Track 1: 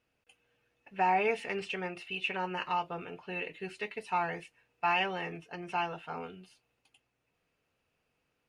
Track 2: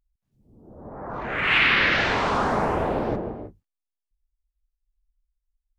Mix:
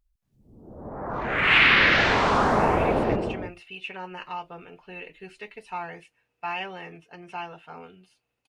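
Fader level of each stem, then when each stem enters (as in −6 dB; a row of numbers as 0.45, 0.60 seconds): −2.5, +2.0 decibels; 1.60, 0.00 seconds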